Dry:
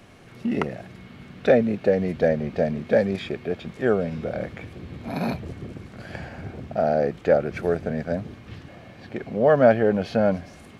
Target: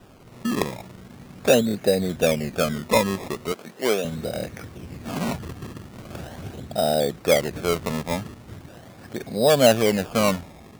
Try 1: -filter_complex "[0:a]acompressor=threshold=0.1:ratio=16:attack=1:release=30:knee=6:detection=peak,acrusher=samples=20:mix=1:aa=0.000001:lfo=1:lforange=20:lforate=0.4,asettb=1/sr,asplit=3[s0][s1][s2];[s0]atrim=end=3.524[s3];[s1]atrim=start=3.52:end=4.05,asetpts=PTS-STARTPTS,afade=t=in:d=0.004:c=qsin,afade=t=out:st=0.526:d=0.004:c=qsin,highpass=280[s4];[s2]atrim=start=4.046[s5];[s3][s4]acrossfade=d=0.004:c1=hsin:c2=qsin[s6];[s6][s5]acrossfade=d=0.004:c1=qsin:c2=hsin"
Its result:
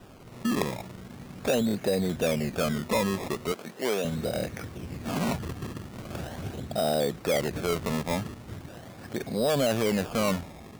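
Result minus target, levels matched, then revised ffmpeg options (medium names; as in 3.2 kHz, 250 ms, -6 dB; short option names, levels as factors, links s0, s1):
compression: peak gain reduction +12.5 dB
-filter_complex "[0:a]acrusher=samples=20:mix=1:aa=0.000001:lfo=1:lforange=20:lforate=0.4,asettb=1/sr,asplit=3[s0][s1][s2];[s0]atrim=end=3.524[s3];[s1]atrim=start=3.52:end=4.05,asetpts=PTS-STARTPTS,afade=t=in:d=0.004:c=qsin,afade=t=out:st=0.526:d=0.004:c=qsin,highpass=280[s4];[s2]atrim=start=4.046[s5];[s3][s4]acrossfade=d=0.004:c1=hsin:c2=qsin[s6];[s6][s5]acrossfade=d=0.004:c1=qsin:c2=hsin"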